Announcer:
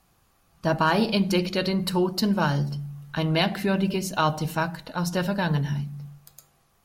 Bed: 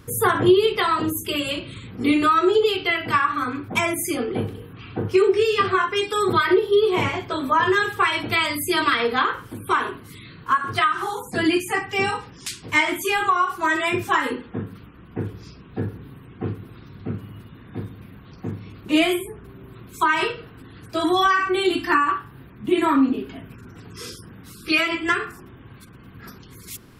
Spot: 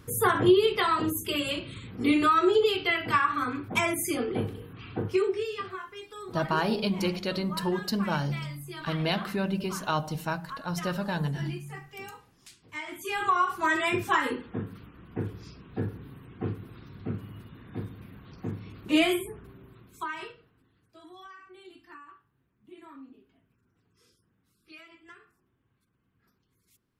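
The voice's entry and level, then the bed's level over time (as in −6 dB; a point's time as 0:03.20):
5.70 s, −5.5 dB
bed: 0:04.97 −4.5 dB
0:05.87 −20.5 dB
0:12.74 −20.5 dB
0:13.33 −4.5 dB
0:19.34 −4.5 dB
0:21.02 −30 dB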